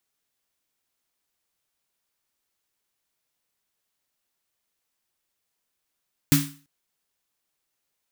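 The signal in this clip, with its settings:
synth snare length 0.34 s, tones 150 Hz, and 280 Hz, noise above 1,100 Hz, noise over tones −4 dB, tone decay 0.37 s, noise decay 0.38 s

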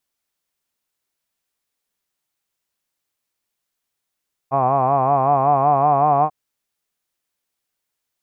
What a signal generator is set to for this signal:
vowel by formant synthesis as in hod, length 1.79 s, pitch 131 Hz, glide +2 semitones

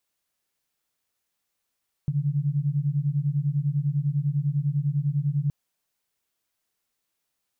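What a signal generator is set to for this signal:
two tones that beat 139 Hz, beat 10 Hz, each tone −25 dBFS 3.42 s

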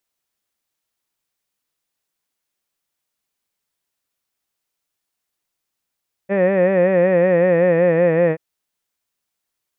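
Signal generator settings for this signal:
vowel by formant synthesis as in head, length 2.08 s, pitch 191 Hz, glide −2.5 semitones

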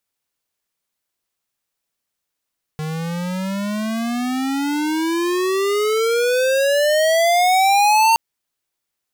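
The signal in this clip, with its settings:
pitch glide with a swell square, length 5.37 s, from 153 Hz, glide +31 semitones, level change +12 dB, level −13 dB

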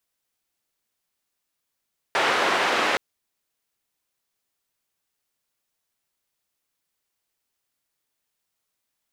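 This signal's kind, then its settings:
band-limited noise 360–1,900 Hz, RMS −22 dBFS 0.82 s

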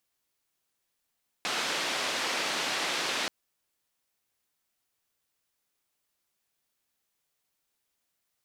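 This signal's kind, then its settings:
band-limited noise 270–4,100 Hz, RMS −31 dBFS 1.83 s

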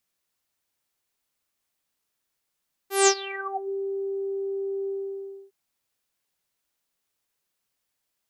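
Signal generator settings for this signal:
subtractive voice saw G4 24 dB per octave, low-pass 450 Hz, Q 12, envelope 5 octaves, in 0.78 s, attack 172 ms, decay 0.07 s, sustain −20.5 dB, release 0.63 s, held 1.98 s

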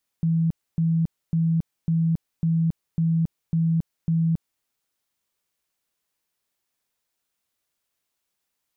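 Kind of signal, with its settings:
tone bursts 164 Hz, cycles 45, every 0.55 s, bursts 8, −18 dBFS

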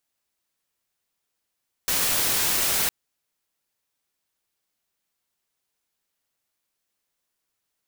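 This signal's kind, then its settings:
noise white, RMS −23 dBFS 1.01 s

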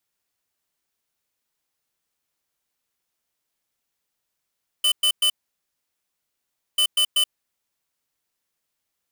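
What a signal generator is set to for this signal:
beeps in groups square 3,020 Hz, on 0.08 s, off 0.11 s, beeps 3, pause 1.48 s, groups 2, −18.5 dBFS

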